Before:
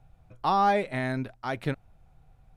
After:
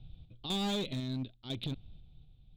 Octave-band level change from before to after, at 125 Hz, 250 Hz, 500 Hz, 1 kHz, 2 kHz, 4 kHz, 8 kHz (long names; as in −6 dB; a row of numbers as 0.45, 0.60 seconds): −4.0 dB, −3.5 dB, −11.5 dB, −20.5 dB, −15.5 dB, +5.5 dB, can't be measured